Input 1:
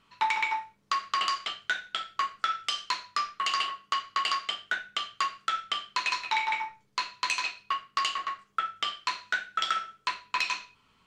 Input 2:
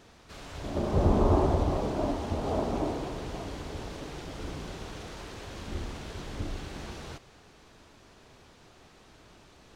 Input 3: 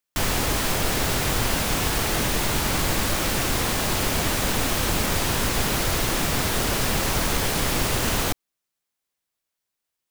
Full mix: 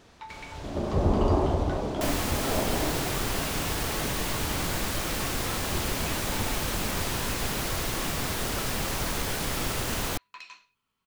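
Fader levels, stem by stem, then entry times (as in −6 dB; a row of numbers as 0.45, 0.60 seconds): −16.5, 0.0, −6.5 decibels; 0.00, 0.00, 1.85 seconds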